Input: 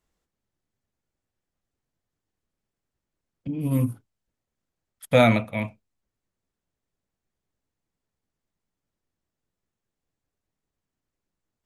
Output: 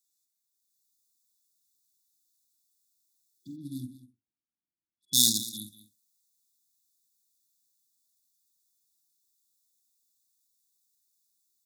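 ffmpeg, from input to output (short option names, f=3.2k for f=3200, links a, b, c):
-filter_complex "[0:a]asplit=2[a][b];[b]adelay=48,volume=-10dB[c];[a][c]amix=inputs=2:normalize=0,acrossover=split=470|4200[d][e][f];[f]alimiter=level_in=13dB:limit=-24dB:level=0:latency=1,volume=-13dB[g];[d][e][g]amix=inputs=3:normalize=0,asplit=3[h][i][j];[h]afade=t=out:st=3.55:d=0.02[k];[i]adynamicsmooth=sensitivity=3:basefreq=650,afade=t=in:st=3.55:d=0.02,afade=t=out:st=5.37:d=0.02[l];[j]afade=t=in:st=5.37:d=0.02[m];[k][l][m]amix=inputs=3:normalize=0,aderivative,asplit=2[n][o];[o]aecho=0:1:195:0.158[p];[n][p]amix=inputs=2:normalize=0,dynaudnorm=f=430:g=3:m=9dB,afftfilt=real='re*(1-between(b*sr/4096,370,3400))':imag='im*(1-between(b*sr/4096,370,3400))':win_size=4096:overlap=0.75,volume=6.5dB"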